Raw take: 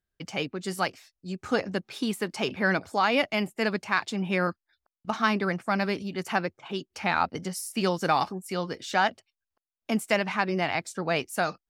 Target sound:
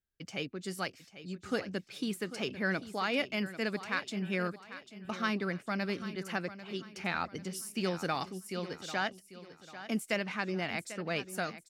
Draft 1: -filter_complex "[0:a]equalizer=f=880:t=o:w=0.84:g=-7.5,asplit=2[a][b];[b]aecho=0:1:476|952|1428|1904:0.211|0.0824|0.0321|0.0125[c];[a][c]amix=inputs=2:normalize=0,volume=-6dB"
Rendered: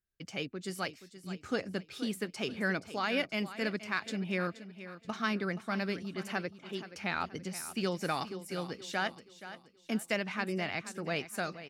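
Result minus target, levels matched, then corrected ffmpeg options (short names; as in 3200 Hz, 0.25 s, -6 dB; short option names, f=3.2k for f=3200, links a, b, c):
echo 0.318 s early
-filter_complex "[0:a]equalizer=f=880:t=o:w=0.84:g=-7.5,asplit=2[a][b];[b]aecho=0:1:794|1588|2382|3176:0.211|0.0824|0.0321|0.0125[c];[a][c]amix=inputs=2:normalize=0,volume=-6dB"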